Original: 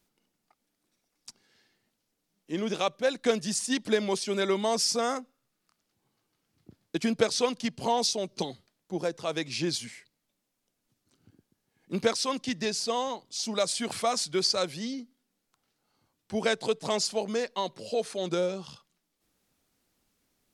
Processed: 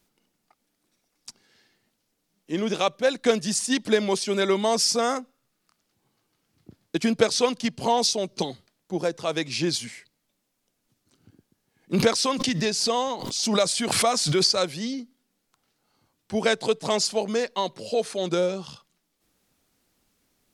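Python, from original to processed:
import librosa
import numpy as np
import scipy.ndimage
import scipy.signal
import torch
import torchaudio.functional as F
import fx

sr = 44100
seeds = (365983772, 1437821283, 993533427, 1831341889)

y = fx.pre_swell(x, sr, db_per_s=43.0, at=(11.93, 14.46))
y = y * 10.0 ** (4.5 / 20.0)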